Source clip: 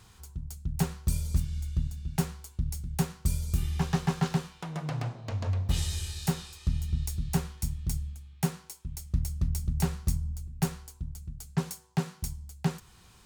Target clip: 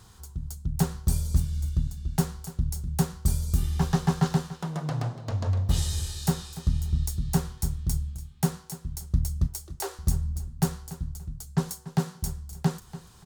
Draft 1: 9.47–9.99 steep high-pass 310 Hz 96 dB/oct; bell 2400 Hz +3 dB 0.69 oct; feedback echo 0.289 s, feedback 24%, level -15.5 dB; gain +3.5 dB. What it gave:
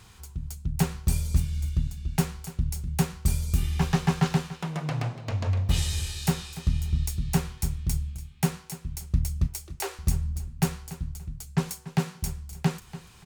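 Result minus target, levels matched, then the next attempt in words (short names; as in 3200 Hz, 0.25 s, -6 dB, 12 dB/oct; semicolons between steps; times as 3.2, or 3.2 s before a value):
2000 Hz band +5.0 dB
9.47–9.99 steep high-pass 310 Hz 96 dB/oct; bell 2400 Hz -8 dB 0.69 oct; feedback echo 0.289 s, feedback 24%, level -15.5 dB; gain +3.5 dB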